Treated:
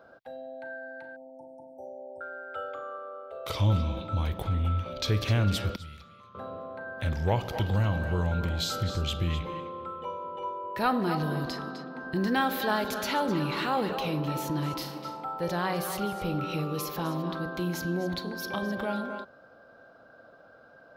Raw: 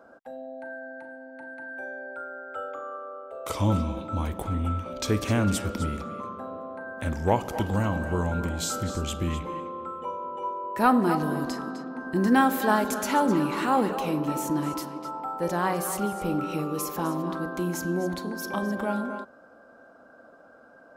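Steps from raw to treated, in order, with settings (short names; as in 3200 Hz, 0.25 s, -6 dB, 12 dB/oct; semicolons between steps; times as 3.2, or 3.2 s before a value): graphic EQ 125/250/1000/4000/8000 Hz +7/-8/-4/+9/-12 dB; in parallel at -1 dB: limiter -23 dBFS, peak gain reduction 10.5 dB; 1.16–2.21 on the sum: brick-wall FIR band-stop 920–5200 Hz; 5.76–6.35 passive tone stack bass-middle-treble 5-5-5; 14.74–15.25 flutter echo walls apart 6.3 m, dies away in 0.45 s; gain -5 dB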